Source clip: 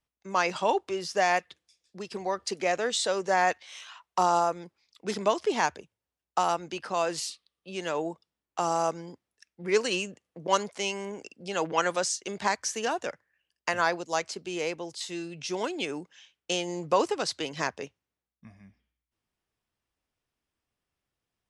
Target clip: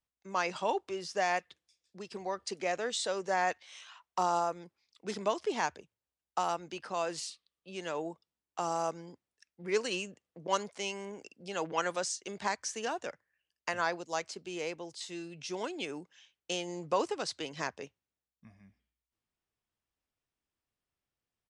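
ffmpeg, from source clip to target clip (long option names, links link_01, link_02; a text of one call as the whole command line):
ffmpeg -i in.wav -af "aresample=22050,aresample=44100,volume=-6dB" out.wav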